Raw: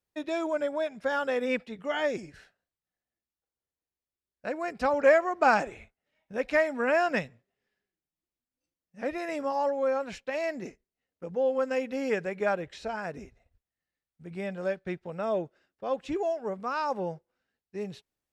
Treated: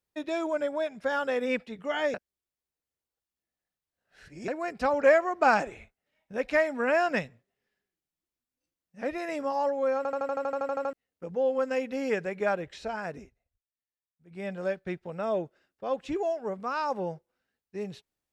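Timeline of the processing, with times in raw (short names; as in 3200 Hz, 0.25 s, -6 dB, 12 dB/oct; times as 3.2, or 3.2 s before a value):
2.14–4.48 reverse
9.97 stutter in place 0.08 s, 12 plays
13.13–14.48 dip -15 dB, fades 0.22 s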